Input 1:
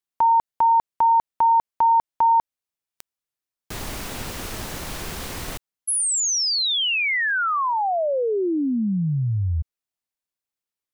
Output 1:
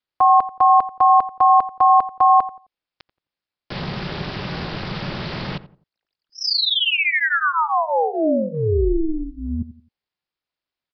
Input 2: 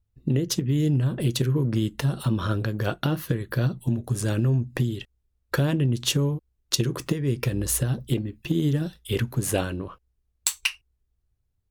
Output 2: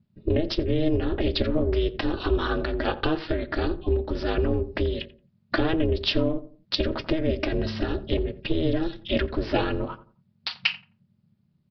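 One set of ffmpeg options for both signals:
-filter_complex "[0:a]aecho=1:1:4.5:0.98,asplit=2[a][b];[b]acompressor=threshold=-27dB:ratio=5:attack=0.12:release=47:knee=1:detection=peak,volume=0dB[c];[a][c]amix=inputs=2:normalize=0,aresample=11025,aresample=44100,aeval=exprs='val(0)*sin(2*PI*160*n/s)':c=same,asplit=2[d][e];[e]adelay=87,lowpass=f=1.1k:p=1,volume=-14dB,asplit=2[f][g];[g]adelay=87,lowpass=f=1.1k:p=1,volume=0.32,asplit=2[h][i];[i]adelay=87,lowpass=f=1.1k:p=1,volume=0.32[j];[d][f][h][j]amix=inputs=4:normalize=0"

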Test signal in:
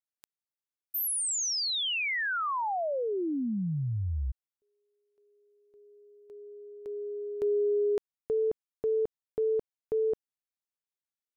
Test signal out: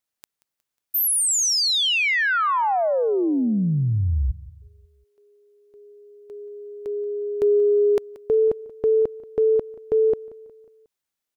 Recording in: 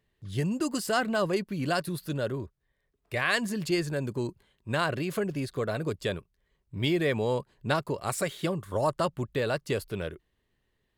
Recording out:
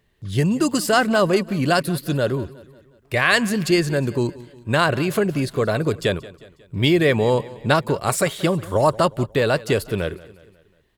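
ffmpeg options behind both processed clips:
-af "acontrast=31,aecho=1:1:181|362|543|724:0.106|0.053|0.0265|0.0132,volume=4.5dB"

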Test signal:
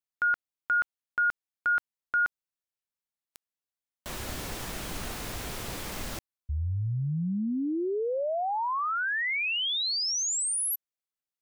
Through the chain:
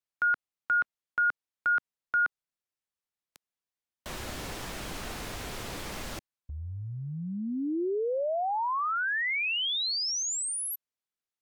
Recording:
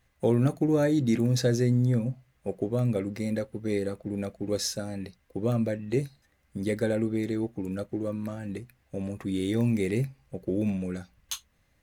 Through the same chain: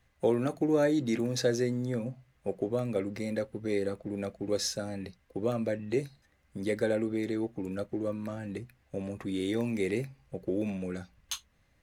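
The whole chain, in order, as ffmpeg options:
-filter_complex "[0:a]highshelf=f=9.8k:g=-8,acrossover=split=280|3600[a][b][c];[a]acompressor=threshold=-37dB:ratio=4:attack=0.19:release=116:knee=1:detection=rms[d];[d][b][c]amix=inputs=3:normalize=0" -ar 48000 -c:a aac -b:a 160k

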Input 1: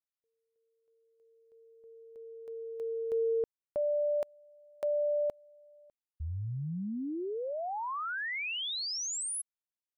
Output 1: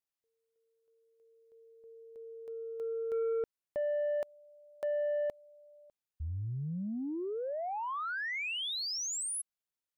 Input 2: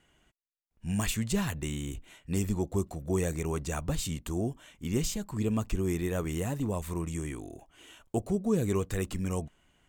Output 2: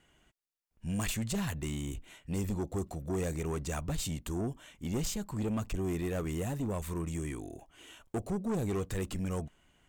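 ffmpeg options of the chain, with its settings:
-af "asoftclip=type=tanh:threshold=-28dB"

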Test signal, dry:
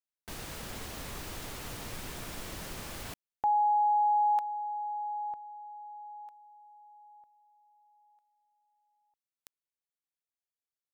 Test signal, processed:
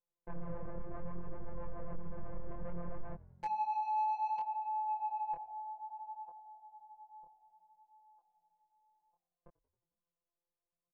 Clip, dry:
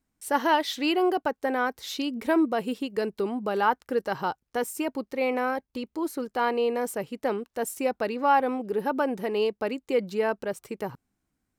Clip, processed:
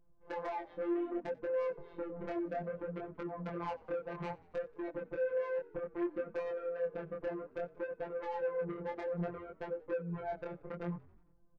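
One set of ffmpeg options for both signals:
-filter_complex "[0:a]lowpass=f=1k:w=0.5412,lowpass=f=1k:w=1.3066,lowshelf=f=190:g=7,aecho=1:1:1.9:0.8,acompressor=threshold=-35dB:ratio=20:attack=12:release=246:knee=1:detection=peak,asoftclip=type=tanh:threshold=-37.5dB,afftfilt=real='hypot(re,im)*cos(PI*b)':imag='0':win_size=1024:overlap=0.75,acrossover=split=620[a][b];[a]aeval=exprs='val(0)*(1-0.5/2+0.5/2*cos(2*PI*7.6*n/s))':c=same[c];[b]aeval=exprs='val(0)*(1-0.5/2-0.5/2*cos(2*PI*7.6*n/s))':c=same[d];[c][d]amix=inputs=2:normalize=0,aeval=exprs='0.0168*sin(PI/2*1.41*val(0)/0.0168)':c=same,flanger=delay=19.5:depth=7.3:speed=0.62,asplit=2[e][f];[f]asplit=5[g][h][i][j][k];[g]adelay=90,afreqshift=-43,volume=-23dB[l];[h]adelay=180,afreqshift=-86,volume=-27dB[m];[i]adelay=270,afreqshift=-129,volume=-31dB[n];[j]adelay=360,afreqshift=-172,volume=-35dB[o];[k]adelay=450,afreqshift=-215,volume=-39.1dB[p];[l][m][n][o][p]amix=inputs=5:normalize=0[q];[e][q]amix=inputs=2:normalize=0,volume=7.5dB"

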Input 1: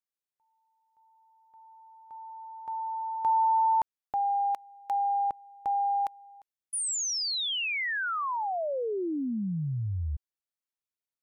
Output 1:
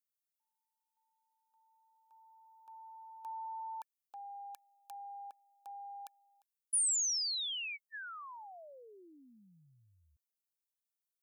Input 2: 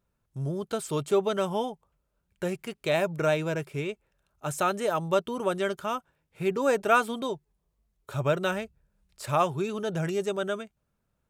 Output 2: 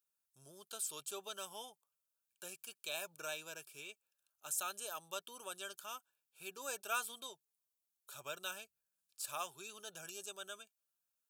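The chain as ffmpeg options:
-af "asuperstop=centerf=2000:order=20:qfactor=3.8,aderivative,volume=-1dB"

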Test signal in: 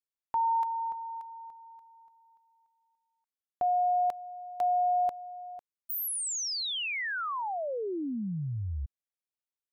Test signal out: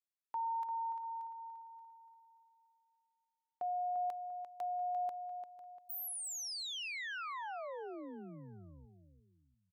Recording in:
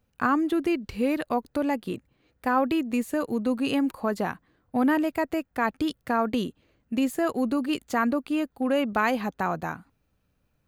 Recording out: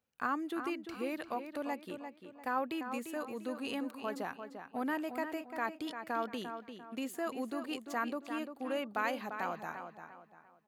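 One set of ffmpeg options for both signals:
-filter_complex "[0:a]highpass=f=450:p=1,asplit=2[a][b];[b]adelay=346,lowpass=f=3.9k:p=1,volume=-8dB,asplit=2[c][d];[d]adelay=346,lowpass=f=3.9k:p=1,volume=0.36,asplit=2[e][f];[f]adelay=346,lowpass=f=3.9k:p=1,volume=0.36,asplit=2[g][h];[h]adelay=346,lowpass=f=3.9k:p=1,volume=0.36[i];[a][c][e][g][i]amix=inputs=5:normalize=0,volume=-9dB"

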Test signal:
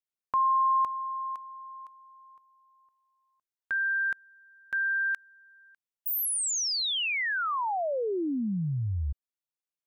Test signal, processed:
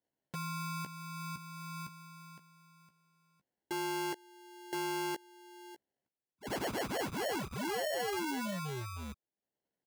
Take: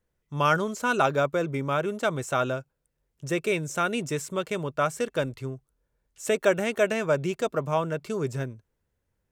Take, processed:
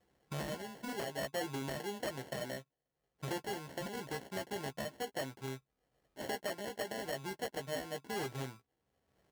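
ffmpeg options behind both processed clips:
-filter_complex "[0:a]acompressor=threshold=-39dB:ratio=10:attack=0.16:release=743:knee=1:detection=rms,aresample=16000,aresample=44100,acrusher=samples=36:mix=1:aa=0.000001,asplit=2[a][b];[b]adelay=15,volume=-7dB[c];[a][c]amix=inputs=2:normalize=0,aeval=exprs='0.0112*(abs(mod(val(0)/0.0112+3,4)-2)-1)':c=same,highpass=f=260:p=1,volume=9dB"

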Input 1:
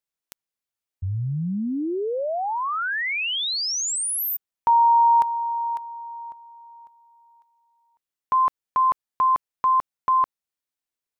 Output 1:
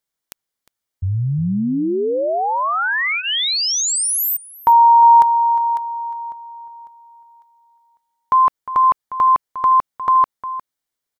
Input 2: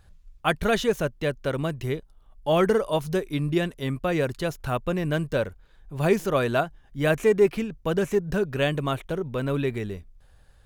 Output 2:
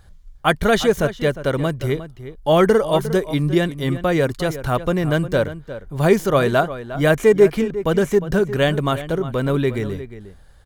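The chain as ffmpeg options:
-filter_complex "[0:a]bandreject=f=2.6k:w=8.2,asplit=2[a][b];[b]adelay=355.7,volume=-13dB,highshelf=f=4k:g=-8[c];[a][c]amix=inputs=2:normalize=0,volume=6.5dB"

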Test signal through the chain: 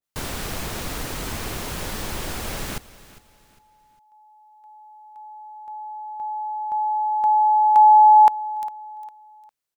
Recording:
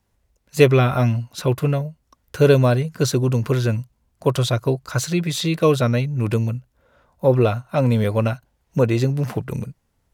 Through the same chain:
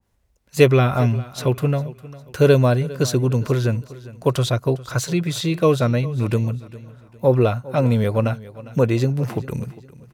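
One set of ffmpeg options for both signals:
-filter_complex "[0:a]asplit=2[a][b];[b]aecho=0:1:404|808|1212:0.119|0.0416|0.0146[c];[a][c]amix=inputs=2:normalize=0,adynamicequalizer=threshold=0.02:dfrequency=1600:dqfactor=0.7:tfrequency=1600:tqfactor=0.7:attack=5:release=100:ratio=0.375:range=1.5:mode=cutabove:tftype=highshelf"

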